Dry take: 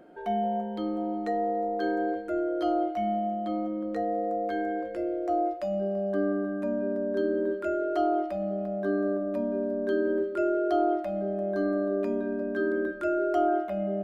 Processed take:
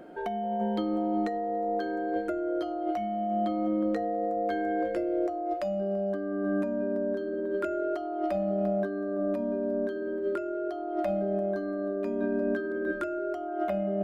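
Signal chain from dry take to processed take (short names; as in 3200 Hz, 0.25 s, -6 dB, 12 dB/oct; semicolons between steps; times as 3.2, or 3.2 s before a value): negative-ratio compressor -32 dBFS, ratio -1; gain +2 dB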